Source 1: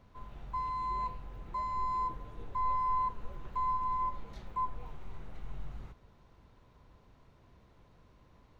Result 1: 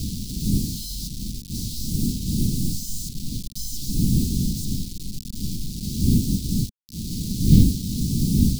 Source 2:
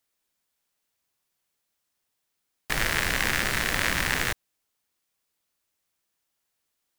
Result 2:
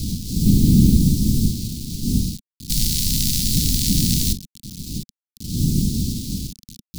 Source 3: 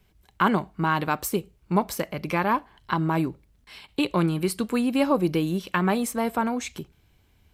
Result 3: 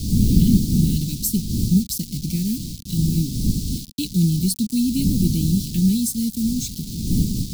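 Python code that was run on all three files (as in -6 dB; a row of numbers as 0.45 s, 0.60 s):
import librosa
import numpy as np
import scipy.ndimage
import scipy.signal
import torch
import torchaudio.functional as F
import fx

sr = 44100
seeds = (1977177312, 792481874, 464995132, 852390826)

y = fx.dmg_wind(x, sr, seeds[0], corner_hz=560.0, level_db=-27.0)
y = fx.quant_dither(y, sr, seeds[1], bits=6, dither='none')
y = scipy.signal.sosfilt(scipy.signal.ellip(3, 1.0, 70, [220.0, 4300.0], 'bandstop', fs=sr, output='sos'), y)
y = librosa.util.normalize(y) * 10.0 ** (-1.5 / 20.0)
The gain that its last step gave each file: +8.5 dB, +11.0 dB, +8.5 dB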